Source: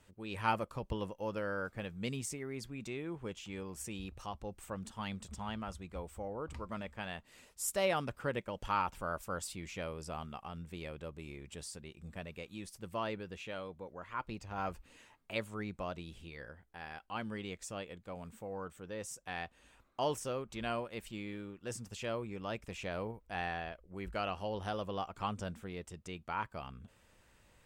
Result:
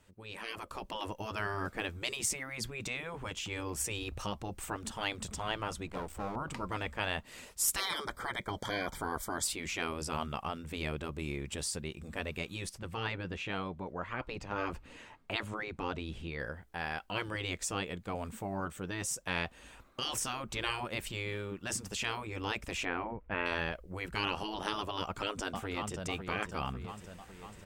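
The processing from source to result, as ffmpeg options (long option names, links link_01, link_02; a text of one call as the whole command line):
ffmpeg -i in.wav -filter_complex "[0:a]asettb=1/sr,asplit=3[link_01][link_02][link_03];[link_01]atrim=end=5.874[link_04];[link_02]atrim=start=5.87:end=6.36,asetpts=PTS-STARTPTS,afade=type=in:duration=0.004:curve=qsin,afade=type=out:start_time=0.486:duration=0.004:curve=qsin,aeval=exprs='max(val(0),0)':channel_layout=same[link_05];[link_03]atrim=start=6.356[link_06];[link_04][link_05]acrossfade=duration=0.004:curve1=hsin:curve2=qsin[link_07];[link_07][link_06]acrossfade=duration=0.004:curve1=qsin:curve2=hsin,asettb=1/sr,asplit=3[link_08][link_09][link_10];[link_08]atrim=end=7.804[link_11];[link_09]atrim=start=7.8:end=9.45,asetpts=PTS-STARTPTS,afade=type=in:duration=0.004:curve=qsin,afade=type=out:start_time=1.646:duration=0.004:curve=qsin,asuperstop=centerf=2700:order=20:qfactor=4.3[link_12];[link_10]atrim=start=9.446[link_13];[link_11][link_12]acrossfade=duration=0.004:curve1=hsin:curve2=qsin[link_14];[link_14][link_13]acrossfade=duration=0.004:curve1=qsin:curve2=hsin,asettb=1/sr,asplit=3[link_15][link_16][link_17];[link_15]atrim=end=12.694[link_18];[link_16]atrim=start=12.69:end=16.4,asetpts=PTS-STARTPTS,afade=type=in:duration=0.004:curve=qsin,afade=type=out:start_time=3.706:duration=0.004:curve=qsin,lowpass=frequency=3000:poles=1[link_19];[link_17]atrim=start=16.396[link_20];[link_18][link_19]acrossfade=duration=0.004:curve1=hsin:curve2=qsin[link_21];[link_21][link_20]acrossfade=duration=0.004:curve1=qsin:curve2=hsin,asettb=1/sr,asplit=3[link_22][link_23][link_24];[link_22]atrim=end=22.854[link_25];[link_23]atrim=start=22.85:end=23.46,asetpts=PTS-STARTPTS,afade=type=in:duration=0.004:curve=qsin,afade=type=out:start_time=0.606:duration=0.004:curve=qsin,lowpass=frequency=2500:width=0.5412,lowpass=frequency=2500:width=1.3066[link_26];[link_24]atrim=start=23.456[link_27];[link_25][link_26]acrossfade=duration=0.004:curve1=hsin:curve2=qsin[link_28];[link_28][link_27]acrossfade=duration=0.004:curve1=qsin:curve2=hsin,asplit=2[link_29][link_30];[link_30]afade=type=in:start_time=24.98:duration=0.01,afade=type=out:start_time=26.01:duration=0.01,aecho=0:1:550|1100|1650|2200|2750|3300|3850:0.281838|0.169103|0.101462|0.0608771|0.0365262|0.0219157|0.0131494[link_31];[link_29][link_31]amix=inputs=2:normalize=0,afftfilt=real='re*lt(hypot(re,im),0.0355)':imag='im*lt(hypot(re,im),0.0355)':win_size=1024:overlap=0.75,dynaudnorm=framelen=160:gausssize=9:maxgain=10dB" out.wav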